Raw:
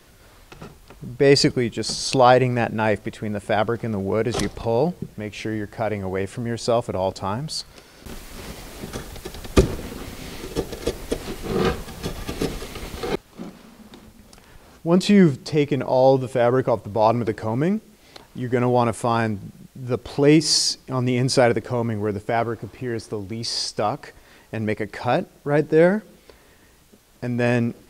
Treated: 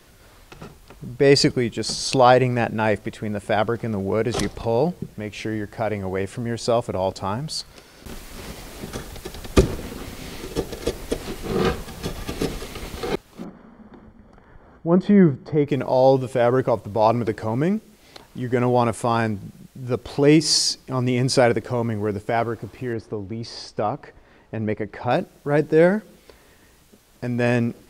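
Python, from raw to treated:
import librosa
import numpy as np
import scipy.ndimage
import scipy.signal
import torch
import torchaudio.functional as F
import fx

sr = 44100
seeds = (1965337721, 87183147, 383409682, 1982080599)

y = fx.savgol(x, sr, points=41, at=(13.43, 15.67), fade=0.02)
y = fx.lowpass(y, sr, hz=1400.0, slope=6, at=(22.93, 25.11))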